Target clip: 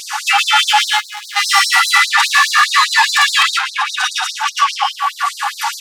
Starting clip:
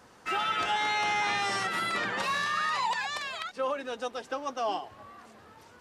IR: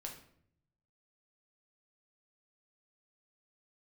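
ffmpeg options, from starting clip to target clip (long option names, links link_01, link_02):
-filter_complex "[0:a]acompressor=threshold=-38dB:ratio=3,aecho=1:1:3.5:0.69,asplit=2[link_01][link_02];[link_02]adelay=641.4,volume=-14dB,highshelf=frequency=4000:gain=-14.4[link_03];[link_01][link_03]amix=inputs=2:normalize=0,asplit=3[link_04][link_05][link_06];[link_04]afade=type=out:start_time=0.85:duration=0.02[link_07];[link_05]aeval=exprs='max(val(0),0)':channel_layout=same,afade=type=in:start_time=0.85:duration=0.02,afade=type=out:start_time=1.35:duration=0.02[link_08];[link_06]afade=type=in:start_time=1.35:duration=0.02[link_09];[link_07][link_08][link_09]amix=inputs=3:normalize=0,asplit=2[link_10][link_11];[1:a]atrim=start_sample=2205,asetrate=32634,aresample=44100,adelay=113[link_12];[link_11][link_12]afir=irnorm=-1:irlink=0,volume=-1.5dB[link_13];[link_10][link_13]amix=inputs=2:normalize=0,asoftclip=type=tanh:threshold=-36dB,acontrast=84,alimiter=level_in=33dB:limit=-1dB:release=50:level=0:latency=1,afftfilt=real='re*gte(b*sr/1024,690*pow(4000/690,0.5+0.5*sin(2*PI*4.9*pts/sr)))':imag='im*gte(b*sr/1024,690*pow(4000/690,0.5+0.5*sin(2*PI*4.9*pts/sr)))':win_size=1024:overlap=0.75,volume=-4.5dB"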